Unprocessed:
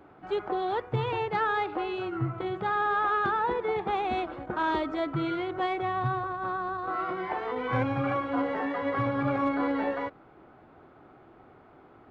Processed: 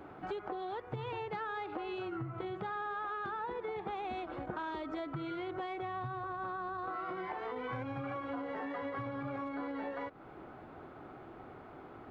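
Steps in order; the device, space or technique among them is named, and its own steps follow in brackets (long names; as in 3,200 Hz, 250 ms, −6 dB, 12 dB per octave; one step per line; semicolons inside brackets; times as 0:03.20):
serial compression, leveller first (downward compressor 3 to 1, threshold −31 dBFS, peak gain reduction 7 dB; downward compressor 4 to 1, threshold −42 dBFS, peak gain reduction 11.5 dB)
level +3.5 dB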